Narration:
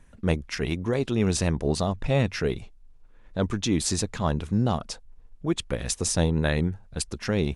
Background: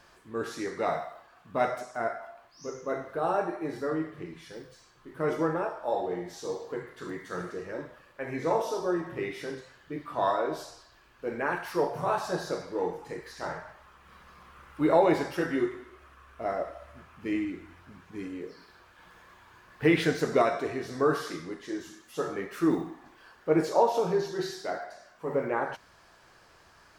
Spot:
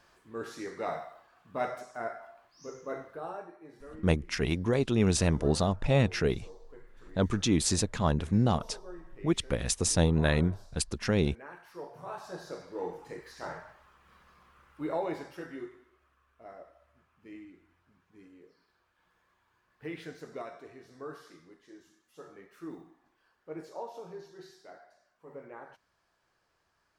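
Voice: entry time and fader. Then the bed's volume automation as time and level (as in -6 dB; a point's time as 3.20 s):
3.80 s, -1.5 dB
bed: 3.00 s -5.5 dB
3.54 s -17.5 dB
11.64 s -17.5 dB
12.99 s -4.5 dB
13.63 s -4.5 dB
16.39 s -17.5 dB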